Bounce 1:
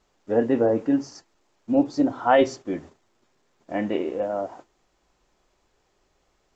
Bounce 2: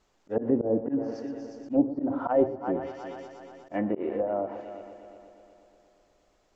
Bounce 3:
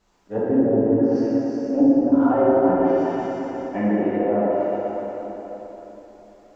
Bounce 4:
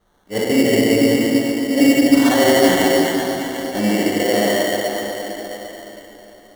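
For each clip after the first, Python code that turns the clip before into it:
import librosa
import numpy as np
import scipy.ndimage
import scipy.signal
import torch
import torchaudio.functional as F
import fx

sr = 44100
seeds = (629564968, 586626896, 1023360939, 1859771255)

y1 = fx.echo_heads(x, sr, ms=120, heads='first and third', feedback_pct=58, wet_db=-15)
y1 = fx.auto_swell(y1, sr, attack_ms=105.0)
y1 = fx.env_lowpass_down(y1, sr, base_hz=590.0, full_db=-20.5)
y1 = y1 * librosa.db_to_amplitude(-1.5)
y2 = fx.rev_plate(y1, sr, seeds[0], rt60_s=3.8, hf_ratio=0.55, predelay_ms=0, drr_db=-8.5)
y3 = fx.sample_hold(y2, sr, seeds[1], rate_hz=2500.0, jitter_pct=0)
y3 = y3 + 10.0 ** (-6.0 / 20.0) * np.pad(y3, (int(141 * sr / 1000.0), 0))[:len(y3)]
y3 = y3 * librosa.db_to_amplitude(3.0)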